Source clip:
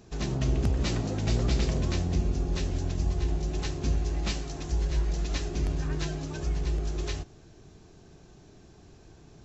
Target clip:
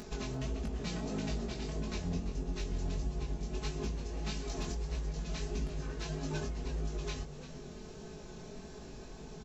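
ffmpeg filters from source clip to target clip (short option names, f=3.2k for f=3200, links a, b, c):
-filter_complex "[0:a]acompressor=mode=upward:threshold=-44dB:ratio=2.5,aecho=1:1:4.7:0.78,acompressor=threshold=-34dB:ratio=16,bandreject=f=50:t=h:w=6,bandreject=f=100:t=h:w=6,bandreject=f=150:t=h:w=6,bandreject=f=200:t=h:w=6,volume=29.5dB,asoftclip=hard,volume=-29.5dB,flanger=delay=18.5:depth=5:speed=1.6,asplit=5[a][b][c][d][e];[b]adelay=341,afreqshift=98,volume=-13dB[f];[c]adelay=682,afreqshift=196,volume=-21.6dB[g];[d]adelay=1023,afreqshift=294,volume=-30.3dB[h];[e]adelay=1364,afreqshift=392,volume=-38.9dB[i];[a][f][g][h][i]amix=inputs=5:normalize=0,volume=4.5dB"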